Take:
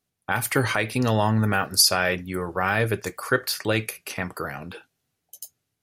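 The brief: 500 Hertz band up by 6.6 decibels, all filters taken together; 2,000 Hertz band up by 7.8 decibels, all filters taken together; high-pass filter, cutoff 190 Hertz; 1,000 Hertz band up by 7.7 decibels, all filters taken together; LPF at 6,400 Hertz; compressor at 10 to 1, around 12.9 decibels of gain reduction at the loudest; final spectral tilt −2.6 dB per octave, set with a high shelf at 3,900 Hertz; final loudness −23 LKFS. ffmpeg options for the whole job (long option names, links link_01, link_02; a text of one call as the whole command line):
ffmpeg -i in.wav -af "highpass=190,lowpass=6400,equalizer=frequency=500:width_type=o:gain=6,equalizer=frequency=1000:width_type=o:gain=6,equalizer=frequency=2000:width_type=o:gain=5.5,highshelf=frequency=3900:gain=9,acompressor=threshold=-23dB:ratio=10,volume=5dB" out.wav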